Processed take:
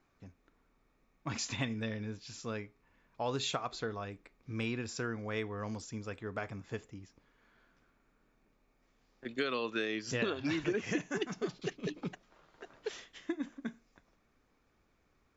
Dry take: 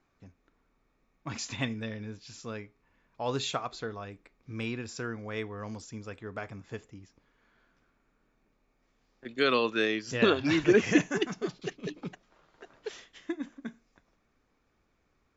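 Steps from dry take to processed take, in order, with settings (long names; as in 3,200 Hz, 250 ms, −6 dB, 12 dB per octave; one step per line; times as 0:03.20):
downward compressor 10 to 1, threshold −30 dBFS, peak gain reduction 14 dB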